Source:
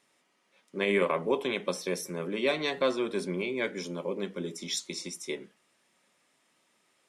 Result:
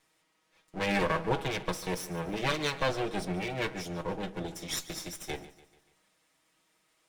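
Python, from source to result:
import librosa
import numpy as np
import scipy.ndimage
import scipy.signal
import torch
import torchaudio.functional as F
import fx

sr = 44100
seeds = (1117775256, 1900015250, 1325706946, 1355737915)

y = fx.lower_of_two(x, sr, delay_ms=6.3)
y = fx.echo_feedback(y, sr, ms=145, feedback_pct=48, wet_db=-17)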